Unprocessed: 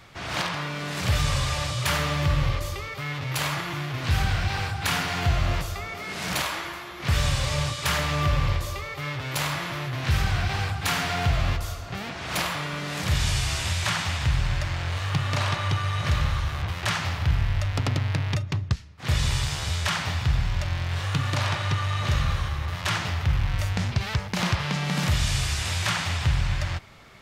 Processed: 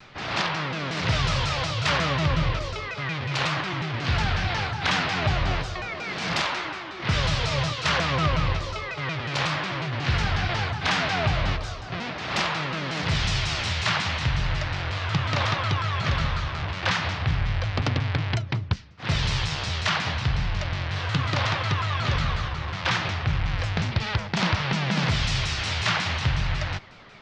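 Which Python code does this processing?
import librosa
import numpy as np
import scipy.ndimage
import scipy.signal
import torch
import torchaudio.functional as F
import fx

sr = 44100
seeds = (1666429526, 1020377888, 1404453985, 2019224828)

y = scipy.signal.sosfilt(scipy.signal.butter(4, 5400.0, 'lowpass', fs=sr, output='sos'), x)
y = fx.peak_eq(y, sr, hz=62.0, db=-8.0, octaves=1.2)
y = fx.vibrato_shape(y, sr, shape='saw_down', rate_hz=5.5, depth_cents=250.0)
y = y * librosa.db_to_amplitude(2.5)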